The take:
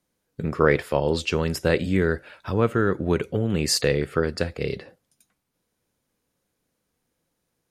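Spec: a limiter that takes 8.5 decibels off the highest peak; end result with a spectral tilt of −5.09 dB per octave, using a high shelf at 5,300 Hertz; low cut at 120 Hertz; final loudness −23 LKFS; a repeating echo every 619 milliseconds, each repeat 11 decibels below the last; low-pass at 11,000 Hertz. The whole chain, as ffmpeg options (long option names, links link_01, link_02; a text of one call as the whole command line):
ffmpeg -i in.wav -af "highpass=120,lowpass=11000,highshelf=frequency=5300:gain=-9,alimiter=limit=-13dB:level=0:latency=1,aecho=1:1:619|1238|1857:0.282|0.0789|0.0221,volume=3.5dB" out.wav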